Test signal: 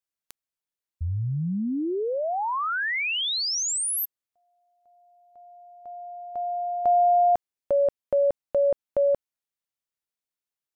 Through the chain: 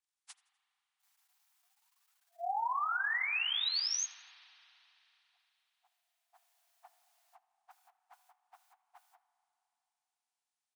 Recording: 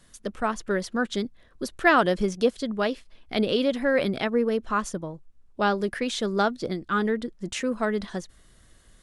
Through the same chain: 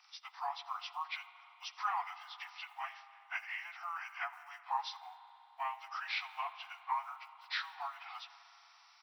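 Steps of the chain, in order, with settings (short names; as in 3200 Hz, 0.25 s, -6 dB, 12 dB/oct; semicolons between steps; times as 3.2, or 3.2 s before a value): inharmonic rescaling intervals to 83%; compressor 4:1, threshold -30 dBFS; short-mantissa float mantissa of 6-bit; brick-wall FIR high-pass 690 Hz; feedback echo 83 ms, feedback 52%, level -23 dB; spring tank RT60 3.5 s, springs 31/36 ms, chirp 35 ms, DRR 13.5 dB; gain -1 dB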